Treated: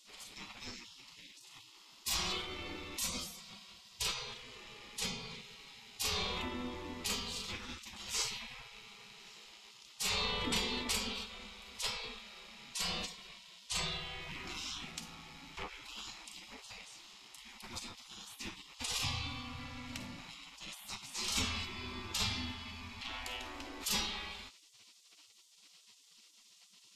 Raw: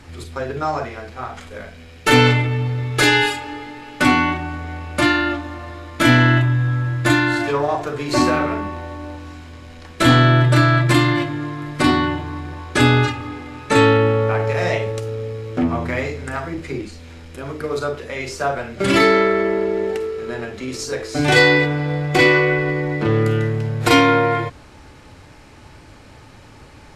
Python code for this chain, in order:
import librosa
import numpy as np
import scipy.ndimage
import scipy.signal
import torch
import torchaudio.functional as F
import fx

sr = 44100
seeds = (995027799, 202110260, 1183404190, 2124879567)

y = fx.spec_gate(x, sr, threshold_db=-25, keep='weak')
y = fx.graphic_eq_15(y, sr, hz=(100, 250, 630, 1600, 10000), db=(8, 5, -10, -12, -6))
y = y * 10.0 ** (-2.0 / 20.0)